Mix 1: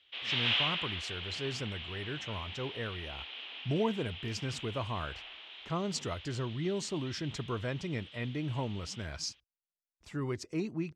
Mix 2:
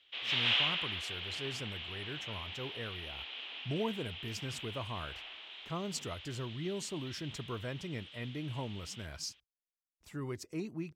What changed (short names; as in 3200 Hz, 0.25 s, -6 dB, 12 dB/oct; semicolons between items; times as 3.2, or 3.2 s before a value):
speech -4.5 dB; master: remove LPF 6900 Hz 12 dB/oct